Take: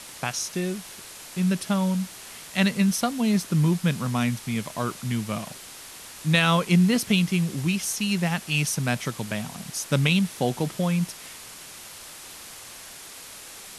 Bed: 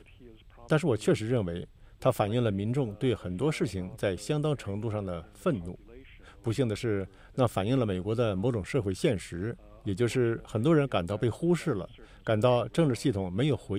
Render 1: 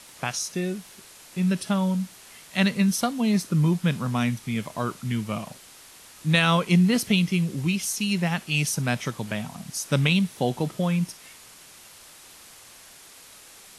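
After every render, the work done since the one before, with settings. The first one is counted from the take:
noise reduction from a noise print 6 dB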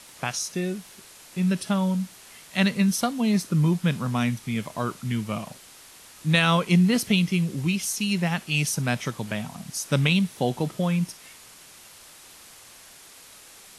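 no processing that can be heard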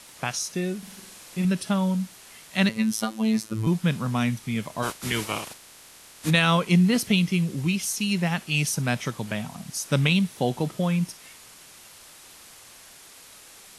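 0:00.78–0:01.45: flutter between parallel walls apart 8.1 metres, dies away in 0.76 s
0:02.69–0:03.67: phases set to zero 110 Hz
0:04.82–0:06.29: ceiling on every frequency bin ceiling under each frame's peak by 21 dB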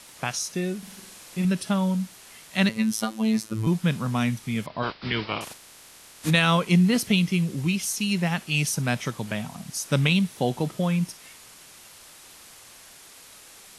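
0:04.66–0:05.41: Butterworth low-pass 5,100 Hz 96 dB per octave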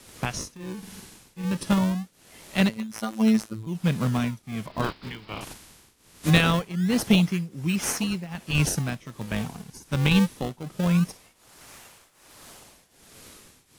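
in parallel at −4 dB: sample-and-hold swept by an LFO 39×, swing 160% 0.23 Hz
on the sum: shaped tremolo triangle 1.3 Hz, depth 90%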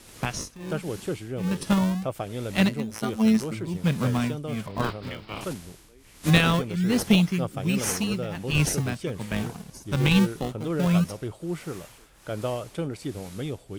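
mix in bed −5.5 dB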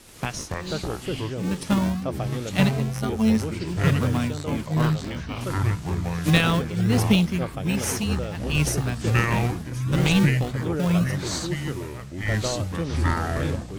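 delay with pitch and tempo change per echo 186 ms, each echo −6 semitones, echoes 2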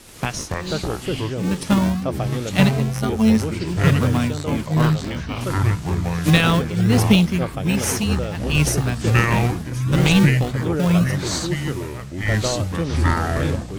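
level +4.5 dB
brickwall limiter −3 dBFS, peak gain reduction 3 dB

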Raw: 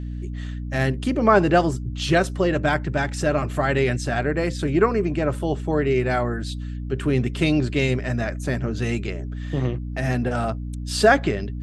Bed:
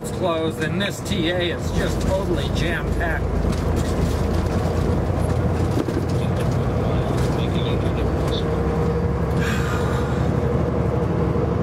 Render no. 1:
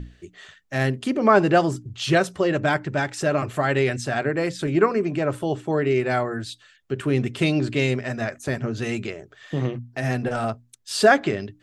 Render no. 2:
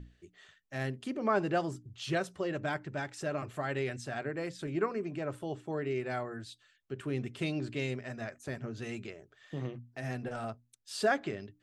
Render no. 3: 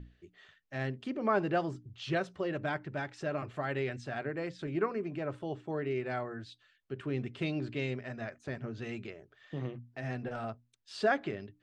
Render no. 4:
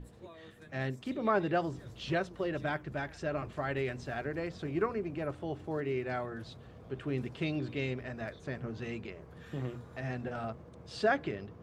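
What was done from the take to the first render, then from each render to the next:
mains-hum notches 60/120/180/240/300 Hz
level −13 dB
low-pass filter 4,300 Hz 12 dB per octave
mix in bed −31 dB

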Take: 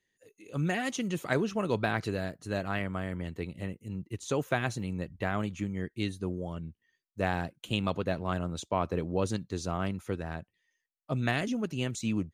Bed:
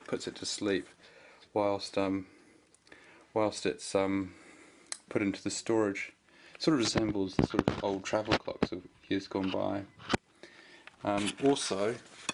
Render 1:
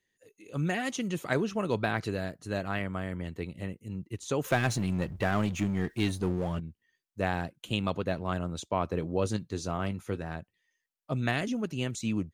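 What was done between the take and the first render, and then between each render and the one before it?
0:04.44–0:06.60: power curve on the samples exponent 0.7
0:09.00–0:10.35: double-tracking delay 19 ms −12 dB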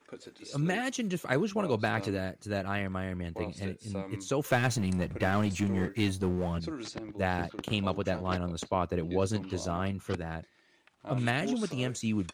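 mix in bed −11 dB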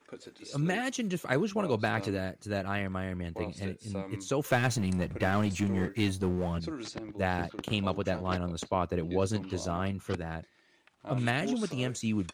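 no processing that can be heard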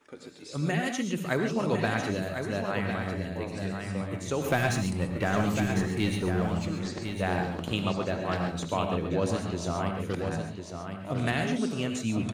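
on a send: single-tap delay 1,052 ms −7 dB
on the sum: reverb whose tail is shaped and stops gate 160 ms rising, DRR 4.5 dB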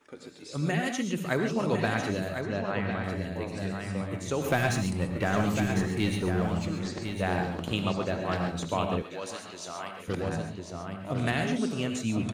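0:02.41–0:03.04: high-frequency loss of the air 100 metres
0:09.02–0:10.08: high-pass filter 1,400 Hz 6 dB per octave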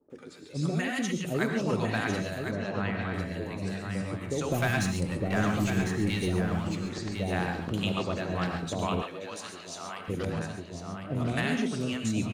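multiband delay without the direct sound lows, highs 100 ms, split 660 Hz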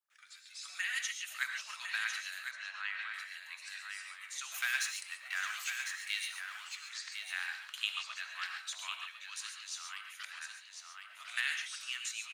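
inverse Chebyshev high-pass filter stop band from 450 Hz, stop band 60 dB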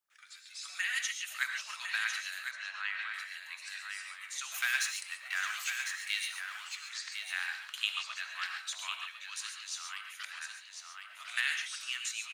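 level +2.5 dB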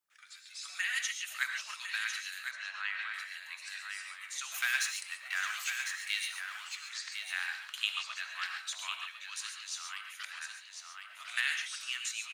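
0:01.74–0:02.44: high-pass filter 1,500 Hz 6 dB per octave

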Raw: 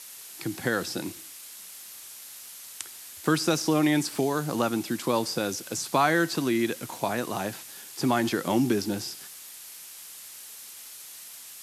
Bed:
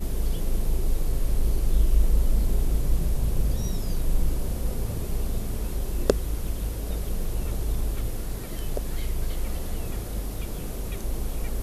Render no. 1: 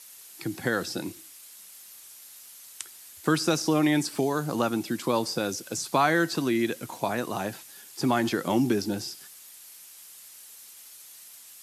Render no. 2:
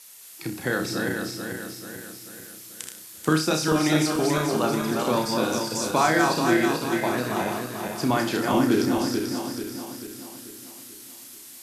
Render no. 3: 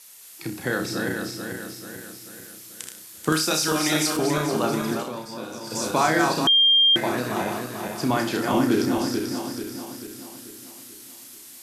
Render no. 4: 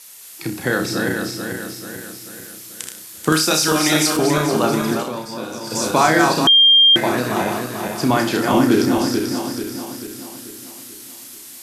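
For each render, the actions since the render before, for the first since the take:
broadband denoise 6 dB, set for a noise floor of −45 dBFS
feedback delay that plays each chunk backwards 219 ms, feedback 70%, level −3.5 dB; flutter between parallel walls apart 5.5 metres, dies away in 0.32 s
0:03.32–0:04.17: spectral tilt +2 dB per octave; 0:04.93–0:05.78: duck −10.5 dB, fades 0.17 s; 0:06.47–0:06.96: beep over 3,200 Hz −13.5 dBFS
level +6 dB; brickwall limiter −2 dBFS, peak gain reduction 1 dB

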